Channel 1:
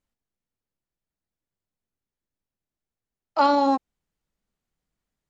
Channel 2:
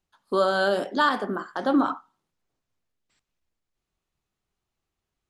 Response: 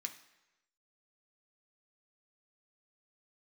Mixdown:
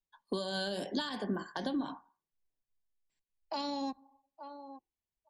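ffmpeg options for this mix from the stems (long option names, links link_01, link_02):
-filter_complex "[0:a]adelay=150,volume=-6.5dB,asplit=3[link_01][link_02][link_03];[link_02]volume=-11.5dB[link_04];[link_03]volume=-22dB[link_05];[1:a]acompressor=threshold=-23dB:ratio=10,volume=2.5dB[link_06];[2:a]atrim=start_sample=2205[link_07];[link_04][link_07]afir=irnorm=-1:irlink=0[link_08];[link_05]aecho=0:1:866|1732|2598:1|0.15|0.0225[link_09];[link_01][link_06][link_08][link_09]amix=inputs=4:normalize=0,afftdn=noise_reduction=19:noise_floor=-58,acrossover=split=200|3000[link_10][link_11][link_12];[link_11]acompressor=threshold=-37dB:ratio=6[link_13];[link_10][link_13][link_12]amix=inputs=3:normalize=0,asuperstop=centerf=1300:order=4:qfactor=4.1"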